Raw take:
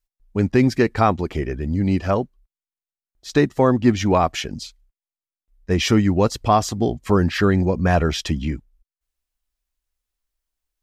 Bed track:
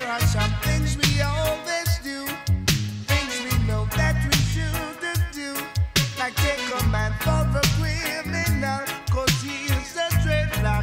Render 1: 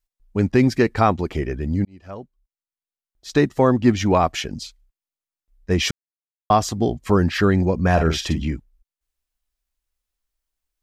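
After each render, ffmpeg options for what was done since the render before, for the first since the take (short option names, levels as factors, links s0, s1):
-filter_complex "[0:a]asettb=1/sr,asplit=3[s0][s1][s2];[s0]atrim=end=7.924[s3];[s1]atrim=start=7.92:end=8.45,asetpts=PTS-STARTPTS,afade=t=in:d=0.004:c=qsin,afade=t=out:st=0.526:d=0.004:c=qsin,asplit=2[s4][s5];[s5]adelay=49,volume=0.398[s6];[s4][s6]amix=inputs=2:normalize=0,atrim=end_sample=23373[s7];[s2]atrim=start=8.446[s8];[s3][s7]acrossfade=d=0.004:c1=hsin:c2=qsin[s9];[s9][s8]acrossfade=d=0.004:c1=qsin:c2=hsin,asplit=4[s10][s11][s12][s13];[s10]atrim=end=1.85,asetpts=PTS-STARTPTS,afade=t=out:st=1.846:d=0.004:c=hsin[s14];[s11]atrim=start=1.85:end=5.91,asetpts=PTS-STARTPTS,afade=t=in:d=1.63,afade=t=out:st=4.056:d=0.004:c=hsin[s15];[s12]atrim=start=5.91:end=6.5,asetpts=PTS-STARTPTS,volume=0[s16];[s13]atrim=start=6.5,asetpts=PTS-STARTPTS,afade=t=in:d=0.004:c=hsin[s17];[s14][s15][s16][s17]concat=n=4:v=0:a=1"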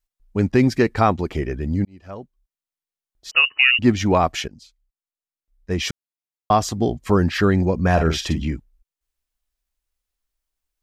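-filter_complex "[0:a]asettb=1/sr,asplit=3[s0][s1][s2];[s0]atrim=end=3.314[s3];[s1]atrim=start=3.31:end=3.79,asetpts=PTS-STARTPTS,afade=t=in:d=0.004:c=qsin,afade=t=out:st=0.476:d=0.004:c=qsin,lowpass=f=2600:t=q:w=0.5098,lowpass=f=2600:t=q:w=0.6013,lowpass=f=2600:t=q:w=0.9,lowpass=f=2600:t=q:w=2.563,afreqshift=-3000[s4];[s2]atrim=start=3.786[s5];[s3][s4]acrossfade=d=0.004:c1=hsin:c2=qsin[s6];[s6][s5]acrossfade=d=0.004:c1=qsin:c2=hsin,asplit=2[s7][s8];[s7]atrim=end=4.48,asetpts=PTS-STARTPTS,afade=t=out:st=4.476:d=0.004:c=hsin:silence=0.158489[s9];[s8]atrim=start=4.48,asetpts=PTS-STARTPTS,afade=t=in:d=2.18:silence=0.158489[s10];[s9][s10]concat=n=2:v=0:a=1"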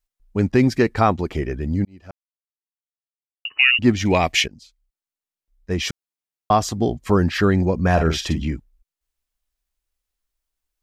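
-filter_complex "[0:a]asettb=1/sr,asplit=3[s0][s1][s2];[s0]atrim=end=4.054[s3];[s1]atrim=start=4.05:end=4.46,asetpts=PTS-STARTPTS,afade=t=in:d=0.004:c=qsin,afade=t=out:st=0.406:d=0.004:c=qsin,highshelf=f=1700:t=q:w=3:g=6.5[s4];[s2]atrim=start=4.456[s5];[s3][s4]acrossfade=d=0.004:c1=hsin:c2=qsin[s6];[s6][s5]acrossfade=d=0.004:c1=qsin:c2=hsin,asplit=3[s7][s8][s9];[s7]atrim=end=2.11,asetpts=PTS-STARTPTS,afade=t=out:st=2.106:d=0.004:c=hsin[s10];[s8]atrim=start=2.11:end=3.45,asetpts=PTS-STARTPTS,volume=0[s11];[s9]atrim=start=3.45,asetpts=PTS-STARTPTS,afade=t=in:d=0.004:c=hsin[s12];[s10][s11][s12]concat=n=3:v=0:a=1"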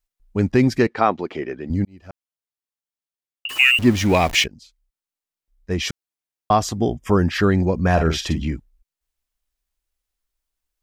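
-filter_complex "[0:a]asettb=1/sr,asplit=3[s0][s1][s2];[s0]atrim=end=0.874[s3];[s1]atrim=start=0.87:end=1.7,asetpts=PTS-STARTPTS,afade=t=in:d=0.004:c=qsin,afade=t=out:st=0.826:d=0.004:c=qsin,highpass=260,lowpass=4200[s4];[s2]atrim=start=1.696[s5];[s3][s4]acrossfade=d=0.004:c1=hsin:c2=qsin[s6];[s6][s5]acrossfade=d=0.004:c1=qsin:c2=hsin,asettb=1/sr,asplit=3[s7][s8][s9];[s7]atrim=end=3.494[s10];[s8]atrim=start=3.49:end=4.44,asetpts=PTS-STARTPTS,afade=t=in:d=0.004:c=qsin,afade=t=out:st=0.946:d=0.004:c=qsin,aeval=exprs='val(0)+0.5*0.0473*sgn(val(0))':c=same[s11];[s9]atrim=start=4.436[s12];[s10][s11]acrossfade=d=0.004:c1=hsin:c2=qsin[s13];[s13][s12]acrossfade=d=0.004:c1=qsin:c2=hsin,asettb=1/sr,asplit=3[s14][s15][s16];[s14]atrim=end=6.794[s17];[s15]atrim=start=6.79:end=7.31,asetpts=PTS-STARTPTS,afade=t=in:d=0.004:c=qsin,afade=t=out:st=0.516:d=0.004:c=qsin,asuperstop=centerf=4200:order=12:qfactor=4.6[s18];[s16]atrim=start=7.306[s19];[s17][s18]acrossfade=d=0.004:c1=hsin:c2=qsin[s20];[s20][s19]acrossfade=d=0.004:c1=qsin:c2=hsin"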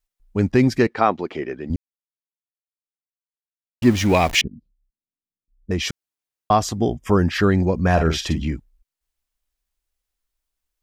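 -filter_complex "[0:a]asettb=1/sr,asplit=3[s0][s1][s2];[s0]atrim=end=4.414[s3];[s1]atrim=start=4.41:end=5.71,asetpts=PTS-STARTPTS,afade=t=in:d=0.004:c=qsin,afade=t=out:st=1.296:d=0.004:c=qsin,lowpass=f=240:t=q:w=2[s4];[s2]atrim=start=5.706[s5];[s3][s4]acrossfade=d=0.004:c1=hsin:c2=qsin[s6];[s6][s5]acrossfade=d=0.004:c1=qsin:c2=hsin,asplit=3[s7][s8][s9];[s7]atrim=end=1.76,asetpts=PTS-STARTPTS,afade=t=out:st=1.756:d=0.004:c=hsin[s10];[s8]atrim=start=1.76:end=3.82,asetpts=PTS-STARTPTS,volume=0[s11];[s9]atrim=start=3.82,asetpts=PTS-STARTPTS,afade=t=in:d=0.004:c=hsin[s12];[s10][s11][s12]concat=n=3:v=0:a=1"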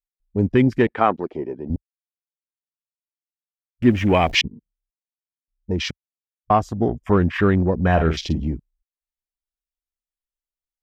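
-af "afwtdn=0.0316"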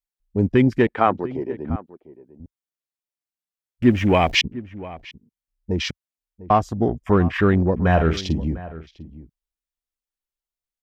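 -filter_complex "[0:a]asplit=2[s0][s1];[s1]adelay=699.7,volume=0.141,highshelf=f=4000:g=-15.7[s2];[s0][s2]amix=inputs=2:normalize=0"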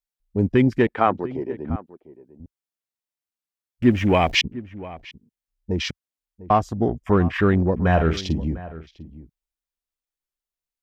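-af "volume=0.891"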